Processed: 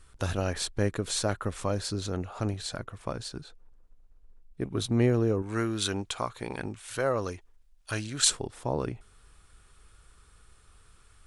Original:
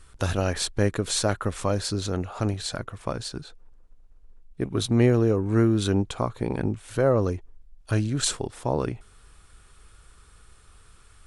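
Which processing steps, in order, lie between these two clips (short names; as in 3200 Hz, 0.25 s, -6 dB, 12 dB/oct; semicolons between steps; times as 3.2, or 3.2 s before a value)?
5.42–8.3 tilt shelf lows -7.5 dB, about 720 Hz; gain -4.5 dB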